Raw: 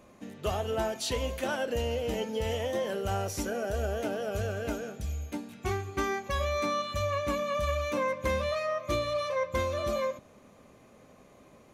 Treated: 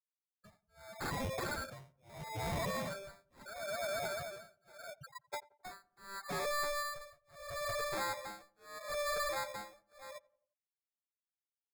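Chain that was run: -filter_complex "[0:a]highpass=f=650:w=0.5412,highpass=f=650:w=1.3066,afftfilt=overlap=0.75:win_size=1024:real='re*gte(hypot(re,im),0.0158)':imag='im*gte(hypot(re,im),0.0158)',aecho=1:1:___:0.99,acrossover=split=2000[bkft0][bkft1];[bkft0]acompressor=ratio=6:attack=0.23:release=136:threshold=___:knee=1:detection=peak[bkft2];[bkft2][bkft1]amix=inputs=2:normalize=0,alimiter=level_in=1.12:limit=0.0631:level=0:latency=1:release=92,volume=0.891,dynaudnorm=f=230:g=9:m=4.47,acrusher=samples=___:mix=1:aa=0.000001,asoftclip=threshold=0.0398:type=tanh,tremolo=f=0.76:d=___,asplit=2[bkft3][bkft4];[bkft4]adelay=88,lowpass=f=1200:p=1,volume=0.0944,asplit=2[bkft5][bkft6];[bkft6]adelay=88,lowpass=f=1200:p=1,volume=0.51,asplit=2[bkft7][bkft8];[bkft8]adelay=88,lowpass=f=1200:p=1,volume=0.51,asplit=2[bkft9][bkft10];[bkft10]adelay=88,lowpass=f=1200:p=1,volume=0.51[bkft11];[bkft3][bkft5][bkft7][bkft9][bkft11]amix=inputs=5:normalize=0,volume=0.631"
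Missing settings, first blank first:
3.2, 0.00891, 15, 1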